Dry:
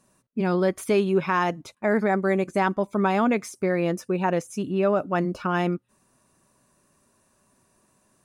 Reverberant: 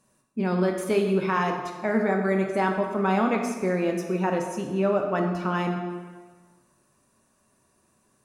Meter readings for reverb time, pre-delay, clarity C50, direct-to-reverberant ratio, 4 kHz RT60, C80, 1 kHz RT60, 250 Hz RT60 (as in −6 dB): 1.4 s, 10 ms, 5.0 dB, 2.5 dB, 1.1 s, 6.5 dB, 1.5 s, 1.4 s